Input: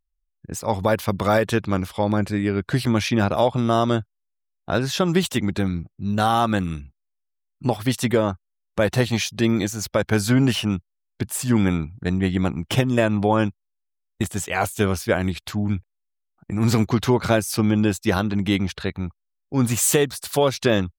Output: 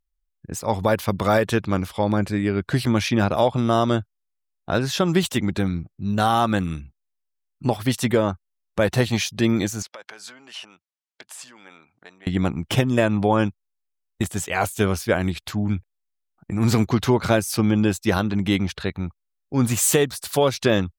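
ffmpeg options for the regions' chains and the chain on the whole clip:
-filter_complex "[0:a]asettb=1/sr,asplit=3[a][b][c];[a]atrim=end=9.824[d];[b]atrim=start=9.82:end=12.27,asetpts=PTS-STARTPTS,afade=t=in:d=0.004:c=qsin,afade=t=out:st=2.446:d=0.004:c=qsin,acompressor=threshold=-30dB:ratio=16:attack=3.2:release=140:knee=1:detection=peak,highpass=690,lowpass=7.8k[e];[c]atrim=start=12.266[f];[d][e]acrossfade=d=0.004:c1=hsin:c2=qsin[g];[g][f]acrossfade=d=0.004:c1=qsin:c2=hsin"

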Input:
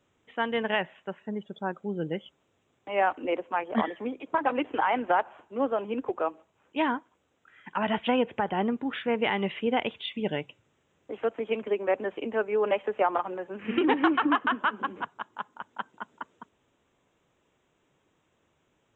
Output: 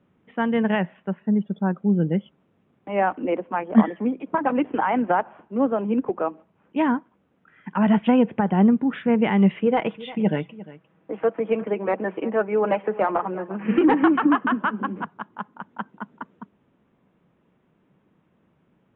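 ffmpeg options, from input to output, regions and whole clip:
-filter_complex "[0:a]asettb=1/sr,asplit=3[a][b][c];[a]atrim=end=9.614[d];[b]atrim=start=9.61:end=14.03,asetpts=PTS-STARTPTS,afade=t=in:d=0.004:c=qsin,afade=t=out:st=4.416:d=0.004:c=qsin,aecho=1:1:6.2:0.43,atrim=end_sample=194922,asplit=2[e][f];[f]highpass=f=720:p=1,volume=10dB,asoftclip=type=tanh:threshold=-10.5dB[g];[e][g]amix=inputs=2:normalize=0,lowpass=f=1.7k:p=1,volume=-6dB,aecho=1:1:351:0.126,atrim=end_sample=194922[h];[c]atrim=start=14.026[i];[d][h]acrossfade=d=0.004:c1=hsin:c2=qsin[j];[j][i]acrossfade=d=0.004:c1=qsin:c2=hsin,lowpass=2.2k,equalizer=f=190:t=o:w=1:g=13.5,volume=2.5dB"

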